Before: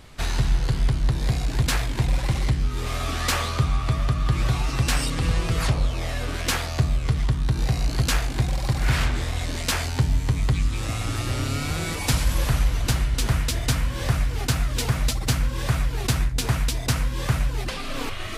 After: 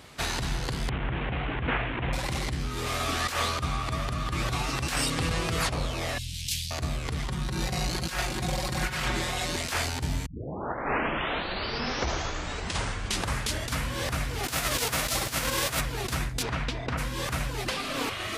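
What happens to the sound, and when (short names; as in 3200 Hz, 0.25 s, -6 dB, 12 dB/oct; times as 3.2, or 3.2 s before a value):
0.89–2.13 delta modulation 16 kbps, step -27.5 dBFS
6.18–6.71 inverse Chebyshev band-stop 460–1100 Hz, stop band 70 dB
7.28–9.56 comb 5.5 ms, depth 75%
10.26 tape start 3.59 s
14.43–15.79 spectral whitening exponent 0.6
16.42–16.97 LPF 4500 Hz -> 2000 Hz
whole clip: HPF 52 Hz; low shelf 140 Hz -9 dB; negative-ratio compressor -27 dBFS, ratio -0.5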